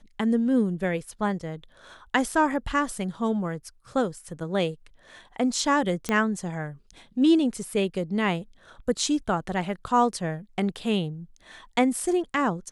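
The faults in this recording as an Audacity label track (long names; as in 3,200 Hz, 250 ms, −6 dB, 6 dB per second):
6.090000	6.090000	click −12 dBFS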